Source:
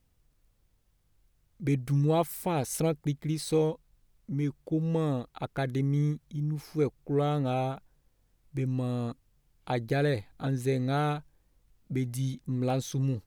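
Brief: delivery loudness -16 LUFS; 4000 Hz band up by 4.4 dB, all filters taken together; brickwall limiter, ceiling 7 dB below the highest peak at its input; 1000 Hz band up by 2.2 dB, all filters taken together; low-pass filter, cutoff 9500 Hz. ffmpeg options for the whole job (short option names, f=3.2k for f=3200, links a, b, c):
-af "lowpass=9.5k,equalizer=f=1k:t=o:g=3,equalizer=f=4k:t=o:g=5,volume=15.5dB,alimiter=limit=-5dB:level=0:latency=1"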